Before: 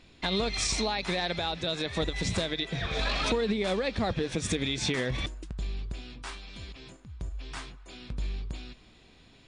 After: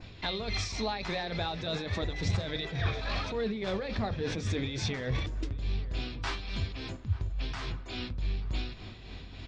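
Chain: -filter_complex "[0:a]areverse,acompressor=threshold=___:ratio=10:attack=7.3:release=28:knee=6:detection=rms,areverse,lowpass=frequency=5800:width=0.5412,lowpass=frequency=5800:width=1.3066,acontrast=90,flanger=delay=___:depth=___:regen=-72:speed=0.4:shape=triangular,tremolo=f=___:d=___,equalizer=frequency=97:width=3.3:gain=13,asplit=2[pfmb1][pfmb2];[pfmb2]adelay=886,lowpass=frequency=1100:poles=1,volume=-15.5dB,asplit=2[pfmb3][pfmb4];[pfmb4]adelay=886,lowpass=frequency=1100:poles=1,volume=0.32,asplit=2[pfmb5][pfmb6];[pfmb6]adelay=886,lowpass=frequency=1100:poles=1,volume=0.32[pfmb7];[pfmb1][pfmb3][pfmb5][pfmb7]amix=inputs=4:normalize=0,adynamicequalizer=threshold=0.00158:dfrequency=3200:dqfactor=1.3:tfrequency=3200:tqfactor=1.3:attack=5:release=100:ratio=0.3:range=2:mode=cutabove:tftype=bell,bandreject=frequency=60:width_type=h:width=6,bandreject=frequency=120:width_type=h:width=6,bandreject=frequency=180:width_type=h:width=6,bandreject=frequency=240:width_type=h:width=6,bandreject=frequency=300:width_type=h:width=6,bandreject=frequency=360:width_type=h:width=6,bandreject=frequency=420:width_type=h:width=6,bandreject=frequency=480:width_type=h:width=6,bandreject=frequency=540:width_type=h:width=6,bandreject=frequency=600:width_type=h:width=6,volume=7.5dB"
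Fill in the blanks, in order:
-40dB, 1.2, 5, 3.5, 0.49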